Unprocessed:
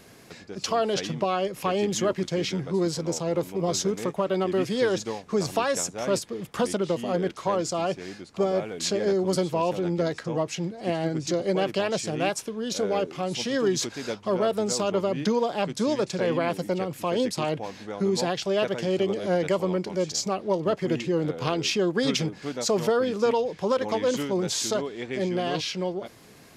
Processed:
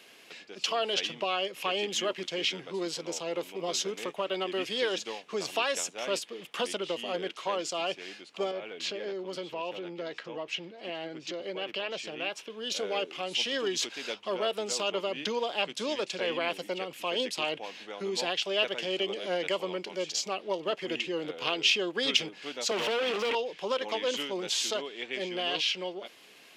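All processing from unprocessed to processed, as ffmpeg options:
-filter_complex "[0:a]asettb=1/sr,asplit=3[s0][s1][s2];[s0]atrim=end=8.514[s3];[s1]atrim=start=8.51:end=12.5,asetpts=PTS-STARTPTS,afade=t=in:d=0.004:c=qsin,afade=t=out:st=3.986:d=0.004:c=qsin,equalizer=f=10000:w=0.63:g=-13.5,bandreject=f=740:w=18,acompressor=threshold=0.0398:ratio=2:attack=3.2:release=140:knee=1:detection=peak[s4];[s2]atrim=start=12.496[s5];[s3][s4]acrossfade=d=0.004:c1=hsin:c2=qsin[s6];[s6][s5]acrossfade=d=0.004:c1=qsin:c2=hsin,asettb=1/sr,asplit=3[s7][s8][s9];[s7]atrim=end=22.714[s10];[s8]atrim=start=22.71:end=23.35,asetpts=PTS-STARTPTS,afade=t=in:d=0.004:c=qsin,afade=t=out:st=0.636:d=0.004:c=qsin,acrossover=split=210|3000[s11][s12][s13];[s12]acompressor=threshold=0.0282:ratio=2:attack=3.2:release=140:knee=2.83:detection=peak[s14];[s11][s14][s13]amix=inputs=3:normalize=0,asplit=2[s15][s16];[s16]highpass=f=720:p=1,volume=35.5,asoftclip=type=tanh:threshold=0.15[s17];[s15][s17]amix=inputs=2:normalize=0,lowpass=f=1400:p=1,volume=0.501[s18];[s9]atrim=start=23.346[s19];[s10][s18]acrossfade=d=0.004:c1=hsin:c2=qsin[s20];[s20][s19]acrossfade=d=0.004:c1=qsin:c2=hsin,highpass=340,equalizer=f=2900:t=o:w=0.87:g=13.5,volume=0.501"

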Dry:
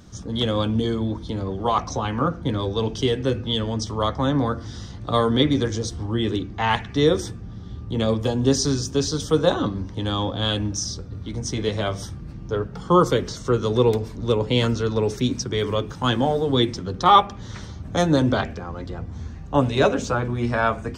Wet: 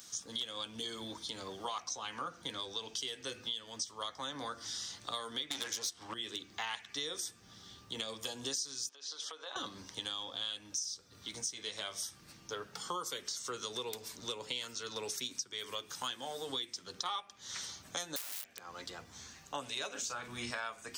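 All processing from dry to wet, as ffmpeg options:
-filter_complex "[0:a]asettb=1/sr,asplit=3[s0][s1][s2];[s0]atrim=end=5.504[s3];[s1]atrim=start=5.5:end=6.14,asetpts=PTS-STARTPTS,afade=t=in:d=0.004:c=qsin,afade=t=out:st=0.636:d=0.004:c=qsin,agate=range=0.0224:threshold=0.0447:ratio=3:release=100:detection=peak,bass=f=250:g=8,treble=f=4000:g=-4,asplit=2[s4][s5];[s5]highpass=f=720:p=1,volume=17.8,asoftclip=type=tanh:threshold=0.531[s6];[s4][s6]amix=inputs=2:normalize=0,lowpass=f=6600:p=1,volume=0.501[s7];[s2]atrim=start=6.136[s8];[s3][s7]acrossfade=d=0.004:c1=hsin:c2=qsin[s9];[s9][s8]acrossfade=d=0.004:c1=qsin:c2=hsin,asettb=1/sr,asplit=3[s10][s11][s12];[s10]atrim=end=8.894[s13];[s11]atrim=start=8.89:end=9.56,asetpts=PTS-STARTPTS,afade=t=in:d=0.004:c=qsin,afade=t=out:st=0.666:d=0.004:c=qsin,acompressor=threshold=0.0398:ratio=16:attack=3.2:release=140:knee=1:detection=peak,highpass=530,lowpass=3300[s14];[s12]atrim=start=9.556[s15];[s13][s14]acrossfade=d=0.004:c1=hsin:c2=qsin[s16];[s16][s15]acrossfade=d=0.004:c1=qsin:c2=hsin,asettb=1/sr,asplit=3[s17][s18][s19];[s17]atrim=end=18.164[s20];[s18]atrim=start=18.16:end=18.65,asetpts=PTS-STARTPTS,afade=t=in:d=0.004:c=qsin,afade=t=out:st=0.486:d=0.004:c=qsin,highpass=86,acompressor=threshold=0.0282:ratio=1.5:attack=3.2:release=140:knee=1:detection=peak,aeval=exprs='(mod(17.8*val(0)+1,2)-1)/17.8':c=same[s21];[s19]atrim=start=18.646[s22];[s20][s21]acrossfade=d=0.004:c1=hsin:c2=qsin[s23];[s23][s22]acrossfade=d=0.004:c1=qsin:c2=hsin,asettb=1/sr,asplit=3[s24][s25][s26];[s24]atrim=end=19.914[s27];[s25]atrim=start=19.91:end=20.51,asetpts=PTS-STARTPTS,afade=t=in:d=0.004:c=qsin,afade=t=out:st=0.596:d=0.004:c=qsin,asubboost=boost=11.5:cutoff=210,asplit=2[s28][s29];[s29]adelay=37,volume=0.376[s30];[s28][s30]amix=inputs=2:normalize=0,atrim=end_sample=26460[s31];[s26]atrim=start=20.506[s32];[s27][s31]acrossfade=d=0.004:c1=hsin:c2=qsin[s33];[s33][s32]acrossfade=d=0.004:c1=qsin:c2=hsin,aderivative,acompressor=threshold=0.00501:ratio=6,volume=2.82"

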